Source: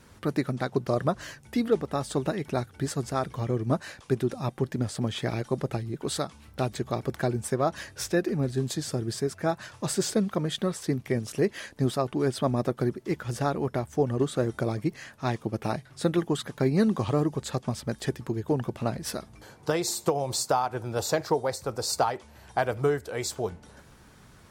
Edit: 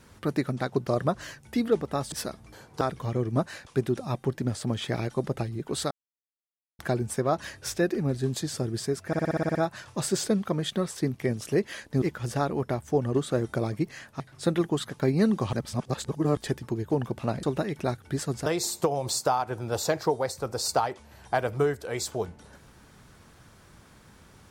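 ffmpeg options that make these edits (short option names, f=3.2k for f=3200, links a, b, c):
-filter_complex "[0:a]asplit=19[a][b][c][d][e][f][g][h][i][j][k][l][m][n][o][p][q][r][s];[a]atrim=end=2.122[t];[b]atrim=start=19.008:end=19.702[u];[c]atrim=start=3.148:end=6.25,asetpts=PTS-STARTPTS,afade=t=out:st=3.098:d=0.004:c=hsin[v];[d]atrim=start=6.25:end=7.13,asetpts=PTS-STARTPTS,volume=0[w];[e]atrim=start=7.13:end=9.472,asetpts=PTS-STARTPTS,afade=t=in:d=0.004:c=hsin[x];[f]atrim=start=9.408:end=9.472[y];[g]atrim=start=9.408:end=9.472[z];[h]atrim=start=9.408:end=9.472[aa];[i]atrim=start=9.408:end=9.472[ab];[j]atrim=start=9.408:end=9.472[ac];[k]atrim=start=9.408:end=9.472[ad];[l]atrim=start=9.408:end=9.472[ae];[m]atrim=start=9.408:end=11.882[af];[n]atrim=start=13.068:end=15.252[ag];[o]atrim=start=15.778:end=17.112[ah];[p]atrim=start=17.108:end=17.952,asetpts=PTS-STARTPTS,areverse[ai];[q]atrim=start=17.948:end=19.012[aj];[r]atrim=start=2.118:end=3.152[ak];[s]atrim=start=19.698[al];[t][u]acrossfade=d=0.004:c1=hsin:c2=hsin[am];[v][w][x]concat=n=3:v=0:a=1[an];[am][an]acrossfade=d=0.004:c1=hsin:c2=hsin[ao];[ao][y]acrossfade=d=0.004:c1=hsin:c2=hsin[ap];[ap][z]acrossfade=d=0.004:c1=hsin:c2=hsin[aq];[aq][aa]acrossfade=d=0.004:c1=hsin:c2=hsin[ar];[ar][ab]acrossfade=d=0.004:c1=hsin:c2=hsin[as];[as][ac]acrossfade=d=0.004:c1=hsin:c2=hsin[at];[at][ad]acrossfade=d=0.004:c1=hsin:c2=hsin[au];[au][ae]acrossfade=d=0.004:c1=hsin:c2=hsin[av];[av][af]acrossfade=d=0.004:c1=hsin:c2=hsin[aw];[aw][ag]acrossfade=d=0.004:c1=hsin:c2=hsin[ax];[ax][ah]acrossfade=d=0.004:c1=hsin:c2=hsin[ay];[ay][ai]acrossfade=d=0.004:c1=hsin:c2=hsin[az];[az][aj]acrossfade=d=0.004:c1=hsin:c2=hsin[ba];[ba][ak]acrossfade=d=0.004:c1=hsin:c2=hsin[bb];[bb][al]acrossfade=d=0.004:c1=hsin:c2=hsin"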